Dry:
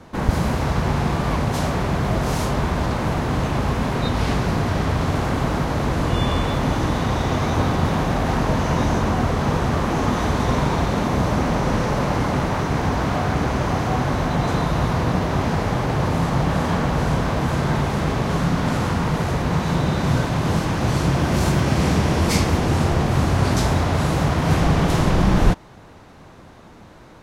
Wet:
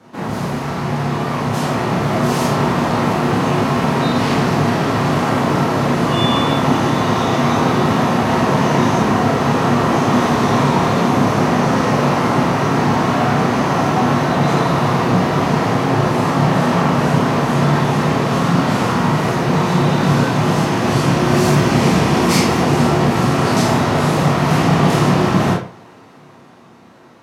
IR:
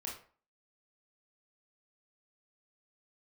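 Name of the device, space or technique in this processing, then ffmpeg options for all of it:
far laptop microphone: -filter_complex "[1:a]atrim=start_sample=2205[s0];[0:a][s0]afir=irnorm=-1:irlink=0,highpass=f=120:w=0.5412,highpass=f=120:w=1.3066,dynaudnorm=f=310:g=11:m=2.11,volume=1.26"

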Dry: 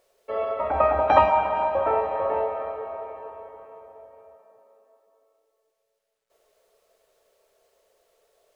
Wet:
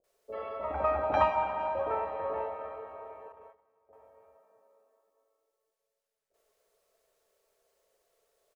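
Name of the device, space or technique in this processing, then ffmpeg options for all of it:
exciter from parts: -filter_complex "[0:a]asplit=2[s0][s1];[s1]highpass=2300,asoftclip=type=tanh:threshold=0.0282,highpass=3100,volume=0.299[s2];[s0][s2]amix=inputs=2:normalize=0,asettb=1/sr,asplit=3[s3][s4][s5];[s3]atrim=end=3.284[s6];[s4]atrim=start=3.28:end=3.89,asetpts=PTS-STARTPTS,afade=t=in:d=0.004:c=qsin,afade=t=out:st=0.606:d=0.004:c=qsin,agate=range=0.141:threshold=0.01:ratio=16:detection=peak[s7];[s5]atrim=start=3.886[s8];[s6][s7]acrossfade=d=0.004:c1=hsin:c2=qsin[s9];[s9][s8]acrossfade=d=0.004:c1=qsin:c2=hsin,acrossover=split=610[s10][s11];[s11]adelay=40[s12];[s10][s12]amix=inputs=2:normalize=0,volume=0.447"

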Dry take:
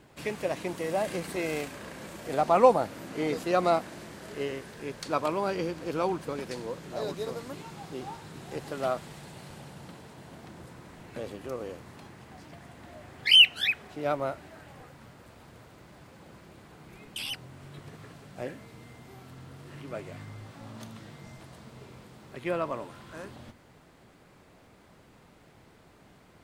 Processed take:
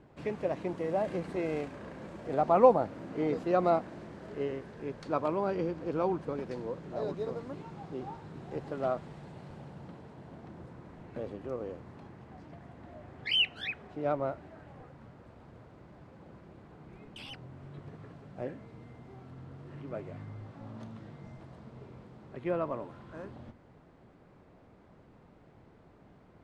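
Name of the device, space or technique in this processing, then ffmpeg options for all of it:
through cloth: -af "lowpass=7200,highshelf=f=1900:g=-15.5"

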